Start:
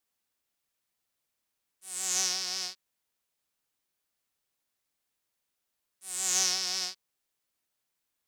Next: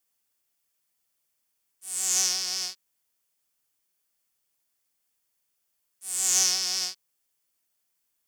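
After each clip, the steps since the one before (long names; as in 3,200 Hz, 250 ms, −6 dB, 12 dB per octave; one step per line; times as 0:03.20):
high-shelf EQ 5,100 Hz +8 dB
notch filter 3,900 Hz, Q 12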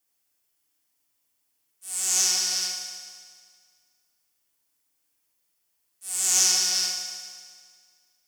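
feedback delay network reverb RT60 1.9 s, low-frequency decay 1×, high-frequency decay 0.95×, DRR 0.5 dB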